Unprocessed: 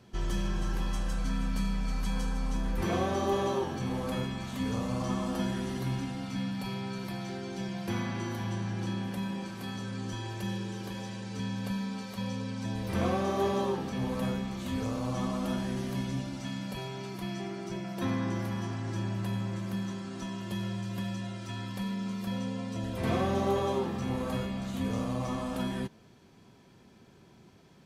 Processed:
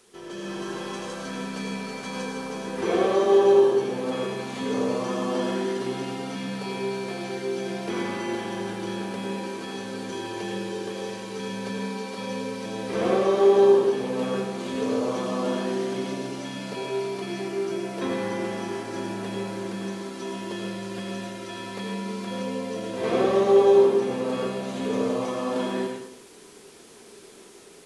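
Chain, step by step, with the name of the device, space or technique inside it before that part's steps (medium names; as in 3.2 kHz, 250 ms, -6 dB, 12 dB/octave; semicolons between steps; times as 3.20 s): filmed off a television (band-pass 280–7200 Hz; peaking EQ 430 Hz +12 dB 0.47 oct; reverberation RT60 0.60 s, pre-delay 80 ms, DRR 1 dB; white noise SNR 25 dB; level rider gain up to 8 dB; trim -4.5 dB; AAC 48 kbps 24 kHz)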